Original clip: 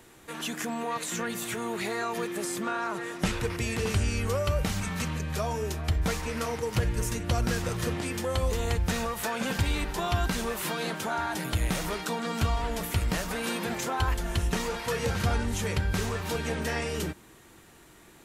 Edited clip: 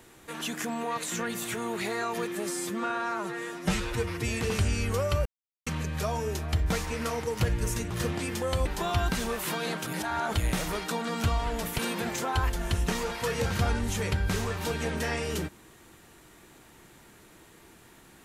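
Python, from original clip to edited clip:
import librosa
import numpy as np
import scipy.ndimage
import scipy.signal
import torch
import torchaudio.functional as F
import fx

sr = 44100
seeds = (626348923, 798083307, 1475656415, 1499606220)

y = fx.edit(x, sr, fx.stretch_span(start_s=2.35, length_s=1.29, factor=1.5),
    fx.silence(start_s=4.61, length_s=0.41),
    fx.cut(start_s=7.26, length_s=0.47),
    fx.cut(start_s=8.48, length_s=1.35),
    fx.reverse_span(start_s=11.04, length_s=0.47),
    fx.cut(start_s=12.96, length_s=0.47), tone=tone)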